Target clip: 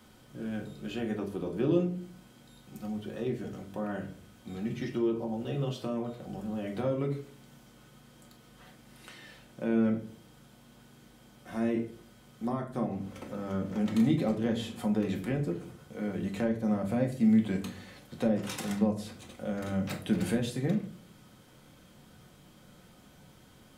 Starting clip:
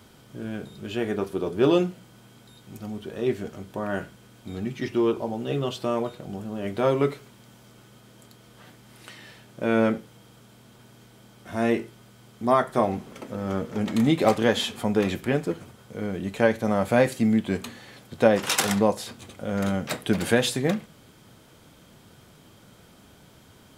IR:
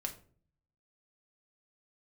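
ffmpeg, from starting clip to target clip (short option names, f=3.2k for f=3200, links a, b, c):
-filter_complex "[0:a]acrossover=split=360[a][b];[b]acompressor=threshold=-33dB:ratio=5[c];[a][c]amix=inputs=2:normalize=0[d];[1:a]atrim=start_sample=2205[e];[d][e]afir=irnorm=-1:irlink=0,volume=-4dB"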